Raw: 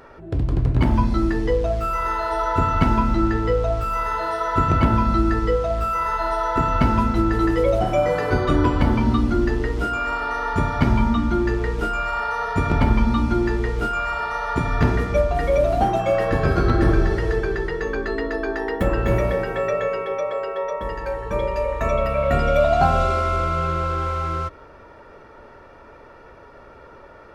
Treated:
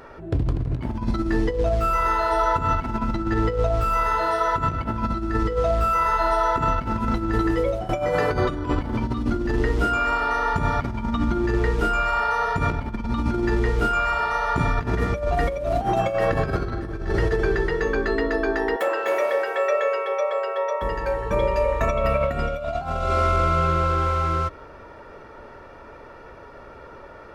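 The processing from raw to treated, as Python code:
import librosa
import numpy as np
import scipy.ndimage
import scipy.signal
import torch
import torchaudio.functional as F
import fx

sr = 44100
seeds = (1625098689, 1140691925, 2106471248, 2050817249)

y = fx.highpass(x, sr, hz=470.0, slope=24, at=(18.76, 20.82))
y = fx.edit(y, sr, fx.fade_out_to(start_s=7.28, length_s=0.61, floor_db=-15.5), tone=tone)
y = fx.over_compress(y, sr, threshold_db=-21.0, ratio=-0.5)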